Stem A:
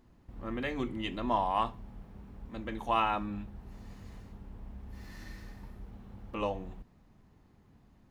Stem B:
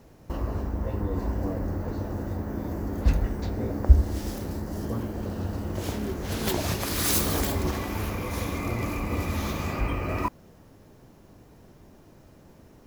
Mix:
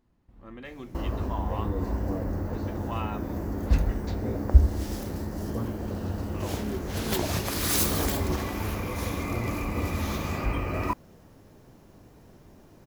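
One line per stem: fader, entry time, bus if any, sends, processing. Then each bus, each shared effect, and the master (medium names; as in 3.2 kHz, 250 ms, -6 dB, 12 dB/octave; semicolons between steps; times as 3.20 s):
-7.5 dB, 0.00 s, no send, none
-0.5 dB, 0.65 s, no send, none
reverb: none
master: none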